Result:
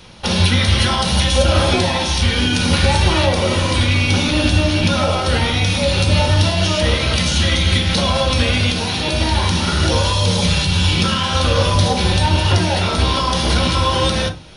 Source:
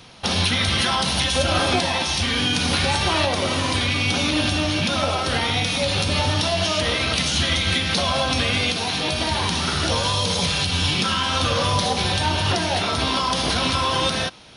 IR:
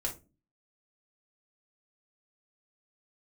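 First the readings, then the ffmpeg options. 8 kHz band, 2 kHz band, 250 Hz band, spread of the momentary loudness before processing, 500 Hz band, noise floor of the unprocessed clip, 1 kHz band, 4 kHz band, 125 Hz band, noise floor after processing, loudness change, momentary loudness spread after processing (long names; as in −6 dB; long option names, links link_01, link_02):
+2.5 dB, +2.5 dB, +6.0 dB, 2 LU, +5.5 dB, −25 dBFS, +2.5 dB, +2.5 dB, +9.5 dB, −20 dBFS, +4.5 dB, 3 LU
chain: -filter_complex "[0:a]asplit=2[link_01][link_02];[1:a]atrim=start_sample=2205,lowshelf=frequency=250:gain=8.5[link_03];[link_02][link_03]afir=irnorm=-1:irlink=0,volume=-1dB[link_04];[link_01][link_04]amix=inputs=2:normalize=0,volume=-3dB"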